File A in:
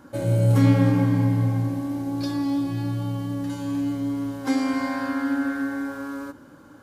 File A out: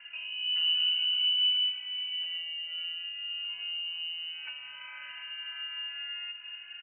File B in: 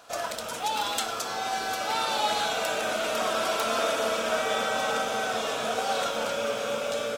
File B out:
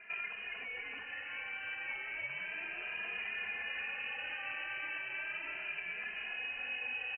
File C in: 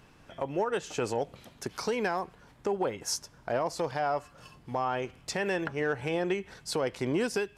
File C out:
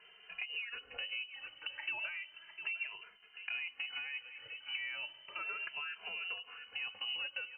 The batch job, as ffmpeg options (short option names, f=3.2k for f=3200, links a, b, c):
-filter_complex "[0:a]aecho=1:1:702:0.133,acrossover=split=120[a][b];[b]acompressor=threshold=-38dB:ratio=5[c];[a][c]amix=inputs=2:normalize=0,lowpass=f=2.6k:t=q:w=0.5098,lowpass=f=2.6k:t=q:w=0.6013,lowpass=f=2.6k:t=q:w=0.9,lowpass=f=2.6k:t=q:w=2.563,afreqshift=-3100,asplit=2[d][e];[e]adelay=2.5,afreqshift=0.34[f];[d][f]amix=inputs=2:normalize=1,volume=1.5dB"